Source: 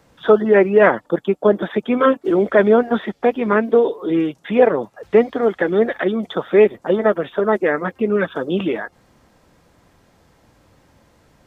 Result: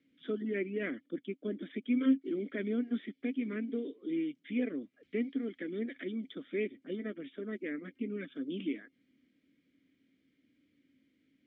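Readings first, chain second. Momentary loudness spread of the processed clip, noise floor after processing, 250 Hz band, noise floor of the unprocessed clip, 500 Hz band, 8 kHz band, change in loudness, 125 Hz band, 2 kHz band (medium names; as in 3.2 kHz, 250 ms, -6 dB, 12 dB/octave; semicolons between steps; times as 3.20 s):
8 LU, -76 dBFS, -13.0 dB, -57 dBFS, -24.5 dB, no reading, -19.5 dB, -19.0 dB, -20.5 dB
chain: vowel filter i; trim -5 dB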